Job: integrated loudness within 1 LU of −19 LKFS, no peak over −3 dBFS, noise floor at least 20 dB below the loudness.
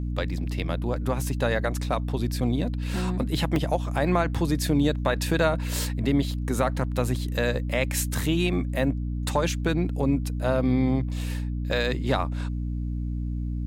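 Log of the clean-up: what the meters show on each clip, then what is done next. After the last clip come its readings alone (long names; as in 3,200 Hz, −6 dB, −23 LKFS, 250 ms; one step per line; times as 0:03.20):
number of dropouts 2; longest dropout 1.8 ms; mains hum 60 Hz; hum harmonics up to 300 Hz; level of the hum −26 dBFS; integrated loudness −26.5 LKFS; sample peak −9.5 dBFS; target loudness −19.0 LKFS
→ repair the gap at 0:01.21/0:03.56, 1.8 ms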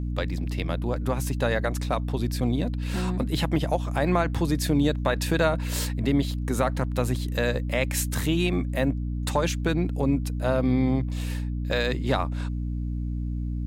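number of dropouts 0; mains hum 60 Hz; hum harmonics up to 300 Hz; level of the hum −26 dBFS
→ hum removal 60 Hz, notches 5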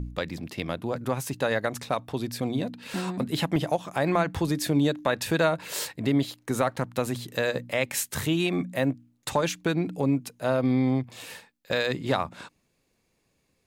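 mains hum none found; integrated loudness −27.5 LKFS; sample peak −9.5 dBFS; target loudness −19.0 LKFS
→ level +8.5 dB
brickwall limiter −3 dBFS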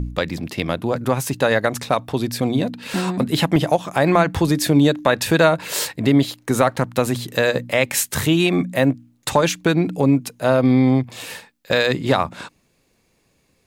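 integrated loudness −19.0 LKFS; sample peak −3.0 dBFS; background noise floor −64 dBFS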